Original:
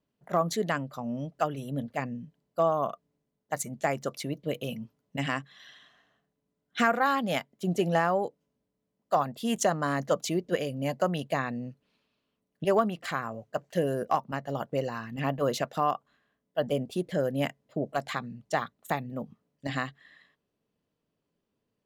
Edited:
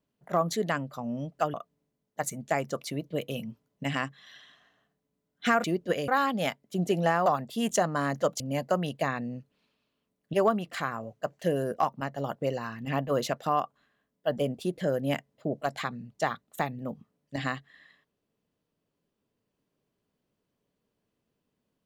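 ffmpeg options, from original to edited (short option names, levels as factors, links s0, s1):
-filter_complex "[0:a]asplit=6[s0][s1][s2][s3][s4][s5];[s0]atrim=end=1.542[s6];[s1]atrim=start=2.868:end=6.972[s7];[s2]atrim=start=10.268:end=10.712[s8];[s3]atrim=start=6.968:end=8.152[s9];[s4]atrim=start=9.128:end=10.272[s10];[s5]atrim=start=10.708[s11];[s6][s7]acrossfade=d=0.004:c1=hsin:c2=hsin[s12];[s12][s8]acrossfade=d=0.004:c1=hsin:c2=hsin[s13];[s13][s9]acrossfade=d=0.004:c1=hsin:c2=hsin[s14];[s14][s10]acrossfade=d=0.004:c1=hsin:c2=hsin[s15];[s15][s11]acrossfade=d=0.004:c1=hsin:c2=hsin"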